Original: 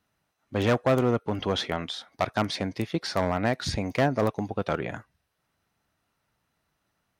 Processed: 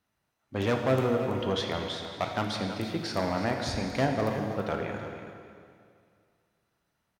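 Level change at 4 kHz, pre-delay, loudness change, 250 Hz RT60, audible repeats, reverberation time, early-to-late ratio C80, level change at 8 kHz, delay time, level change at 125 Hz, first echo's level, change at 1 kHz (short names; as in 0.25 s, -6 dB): -2.5 dB, 6 ms, -2.5 dB, 2.3 s, 1, 2.2 s, 4.5 dB, -2.5 dB, 0.328 s, -2.5 dB, -11.5 dB, -2.5 dB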